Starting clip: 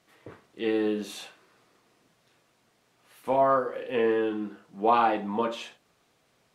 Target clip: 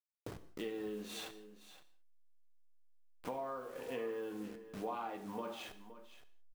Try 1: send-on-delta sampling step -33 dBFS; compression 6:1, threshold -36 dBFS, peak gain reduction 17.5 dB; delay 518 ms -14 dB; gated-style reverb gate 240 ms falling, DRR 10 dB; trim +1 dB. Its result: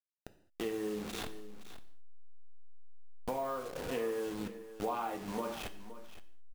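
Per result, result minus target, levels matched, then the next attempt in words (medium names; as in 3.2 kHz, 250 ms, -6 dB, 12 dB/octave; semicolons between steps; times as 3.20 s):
send-on-delta sampling: distortion +11 dB; compression: peak gain reduction -5 dB
send-on-delta sampling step -42.5 dBFS; compression 6:1, threshold -36 dBFS, peak gain reduction 17.5 dB; delay 518 ms -14 dB; gated-style reverb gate 240 ms falling, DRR 10 dB; trim +1 dB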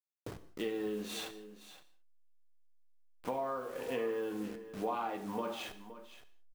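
compression: peak gain reduction -5 dB
send-on-delta sampling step -42.5 dBFS; compression 6:1, threshold -42 dBFS, peak gain reduction 22.5 dB; delay 518 ms -14 dB; gated-style reverb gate 240 ms falling, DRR 10 dB; trim +1 dB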